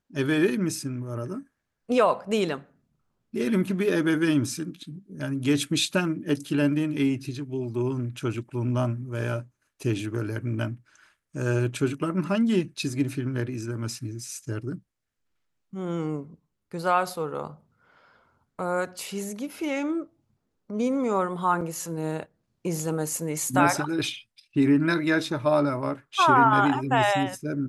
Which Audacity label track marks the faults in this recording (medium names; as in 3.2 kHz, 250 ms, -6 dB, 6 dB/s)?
21.610000	21.610000	dropout 4.2 ms